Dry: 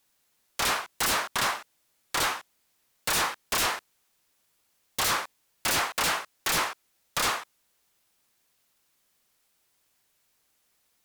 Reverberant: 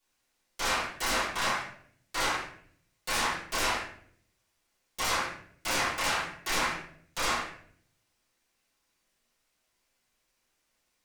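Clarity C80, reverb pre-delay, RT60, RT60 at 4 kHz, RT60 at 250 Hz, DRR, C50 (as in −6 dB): 7.5 dB, 3 ms, 0.60 s, 0.45 s, 0.85 s, −10.0 dB, 3.0 dB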